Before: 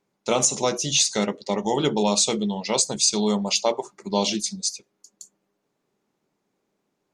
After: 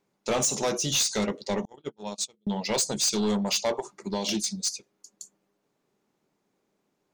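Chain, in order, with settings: 1.65–2.47 gate -17 dBFS, range -48 dB; 3.77–4.29 compressor 6:1, threshold -24 dBFS, peak gain reduction 8 dB; soft clip -20 dBFS, distortion -10 dB

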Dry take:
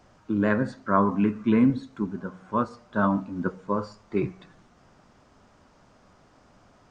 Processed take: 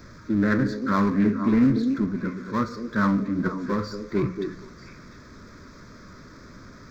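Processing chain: power-law curve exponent 0.7; fixed phaser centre 2900 Hz, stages 6; delay with a stepping band-pass 0.235 s, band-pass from 330 Hz, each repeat 1.4 oct, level -4 dB; Doppler distortion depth 0.13 ms

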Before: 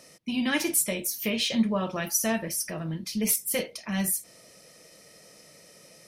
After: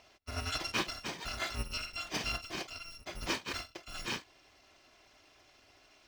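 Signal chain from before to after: FFT order left unsorted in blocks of 256 samples; air absorption 180 m

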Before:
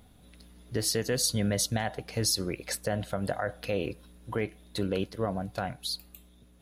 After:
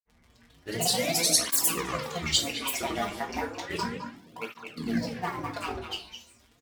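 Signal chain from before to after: low-pass opened by the level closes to 2200 Hz, open at -26 dBFS; tilt +2.5 dB/oct; in parallel at -10.5 dB: bit-crush 5-bit; on the sum: resonator 74 Hz, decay 1.3 s, harmonics all, mix 50%; crackle 58/s -46 dBFS; grains, pitch spread up and down by 12 st; speakerphone echo 0.21 s, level -8 dB; shoebox room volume 270 m³, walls furnished, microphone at 1.8 m; tape flanging out of phase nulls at 0.33 Hz, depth 7.8 ms; gain +5.5 dB

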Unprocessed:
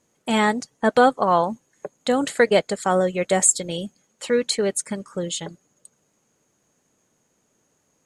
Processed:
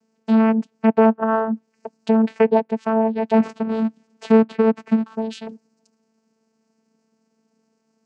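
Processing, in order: 3.33–5.15 half-waves squared off; treble ducked by the level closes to 1600 Hz, closed at -17 dBFS; vocoder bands 8, saw 222 Hz; gain +3.5 dB

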